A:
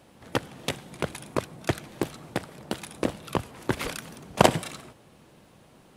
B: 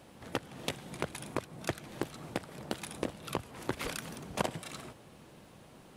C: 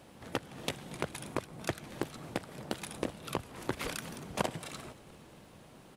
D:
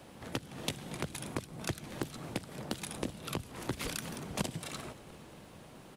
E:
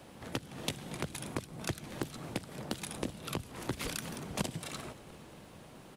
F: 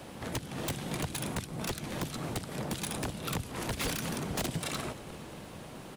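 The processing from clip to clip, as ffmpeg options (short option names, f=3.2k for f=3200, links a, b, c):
-af "acompressor=threshold=-32dB:ratio=4"
-filter_complex "[0:a]asplit=6[a][b][c][d][e][f];[b]adelay=231,afreqshift=-57,volume=-22dB[g];[c]adelay=462,afreqshift=-114,volume=-26dB[h];[d]adelay=693,afreqshift=-171,volume=-30dB[i];[e]adelay=924,afreqshift=-228,volume=-34dB[j];[f]adelay=1155,afreqshift=-285,volume=-38.1dB[k];[a][g][h][i][j][k]amix=inputs=6:normalize=0"
-filter_complex "[0:a]acrossover=split=310|3000[a][b][c];[b]acompressor=threshold=-42dB:ratio=6[d];[a][d][c]amix=inputs=3:normalize=0,volume=2.5dB"
-af anull
-af "aeval=exprs='0.0224*(abs(mod(val(0)/0.0224+3,4)-2)-1)':c=same,volume=7dB"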